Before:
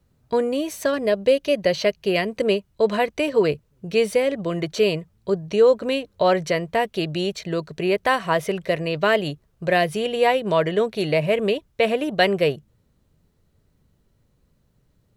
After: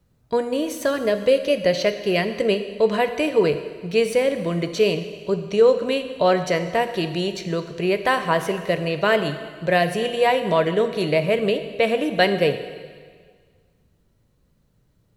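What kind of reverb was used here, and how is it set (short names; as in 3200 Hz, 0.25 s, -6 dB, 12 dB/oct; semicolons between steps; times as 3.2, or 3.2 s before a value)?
plate-style reverb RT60 1.7 s, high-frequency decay 1×, DRR 8.5 dB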